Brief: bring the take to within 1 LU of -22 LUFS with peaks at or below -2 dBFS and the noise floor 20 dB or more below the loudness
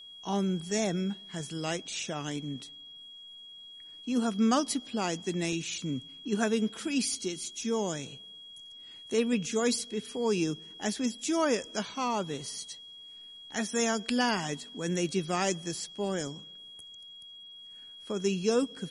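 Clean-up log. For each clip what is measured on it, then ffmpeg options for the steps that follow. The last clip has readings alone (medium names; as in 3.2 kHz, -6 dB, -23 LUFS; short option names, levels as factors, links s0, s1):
steady tone 3.3 kHz; tone level -46 dBFS; loudness -31.5 LUFS; peak level -12.0 dBFS; loudness target -22.0 LUFS
-> -af "bandreject=f=3300:w=30"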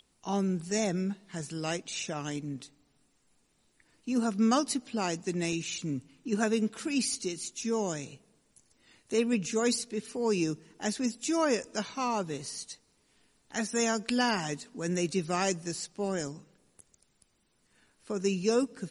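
steady tone not found; loudness -31.5 LUFS; peak level -12.0 dBFS; loudness target -22.0 LUFS
-> -af "volume=2.99"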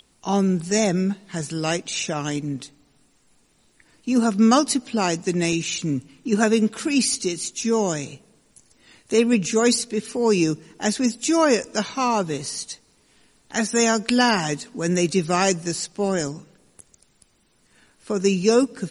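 loudness -22.0 LUFS; peak level -2.5 dBFS; noise floor -62 dBFS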